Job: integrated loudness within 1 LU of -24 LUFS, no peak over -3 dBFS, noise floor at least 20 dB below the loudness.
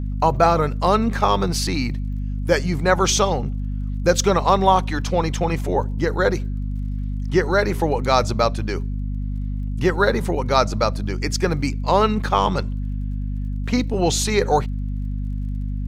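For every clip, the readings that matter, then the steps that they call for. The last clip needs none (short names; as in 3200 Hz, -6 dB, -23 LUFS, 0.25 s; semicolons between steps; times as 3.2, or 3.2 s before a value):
ticks 33/s; hum 50 Hz; harmonics up to 250 Hz; hum level -22 dBFS; loudness -21.0 LUFS; peak -1.0 dBFS; loudness target -24.0 LUFS
-> de-click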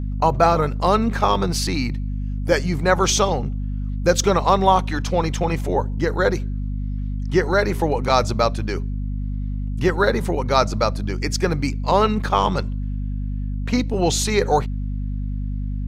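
ticks 0/s; hum 50 Hz; harmonics up to 250 Hz; hum level -23 dBFS
-> de-hum 50 Hz, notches 5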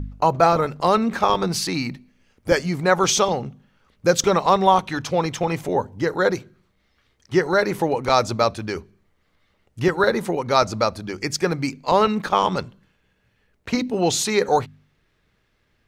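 hum none; loudness -21.0 LUFS; peak -1.5 dBFS; loudness target -24.0 LUFS
-> gain -3 dB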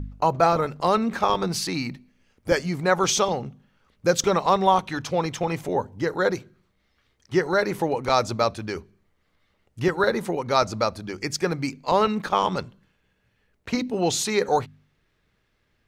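loudness -24.0 LUFS; peak -4.5 dBFS; noise floor -70 dBFS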